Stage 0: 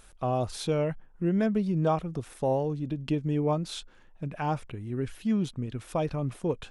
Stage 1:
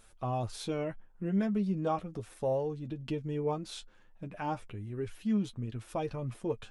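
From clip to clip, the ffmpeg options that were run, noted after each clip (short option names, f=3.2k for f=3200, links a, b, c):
-af "flanger=delay=8.8:depth=1.3:regen=27:speed=0.32:shape=sinusoidal,volume=-1.5dB"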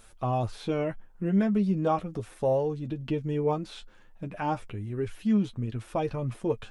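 -filter_complex "[0:a]acrossover=split=3200[a][b];[b]acompressor=threshold=-57dB:ratio=4:attack=1:release=60[c];[a][c]amix=inputs=2:normalize=0,volume=5.5dB"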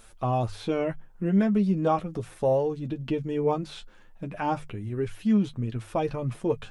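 -af "bandreject=f=50:t=h:w=6,bandreject=f=100:t=h:w=6,bandreject=f=150:t=h:w=6,volume=2dB"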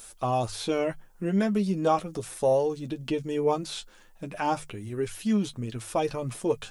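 -af "bass=f=250:g=-6,treble=f=4k:g=12,volume=1dB"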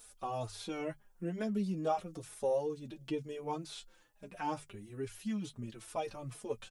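-filter_complex "[0:a]asplit=2[a][b];[b]adelay=4.2,afreqshift=-2.2[c];[a][c]amix=inputs=2:normalize=1,volume=-7.5dB"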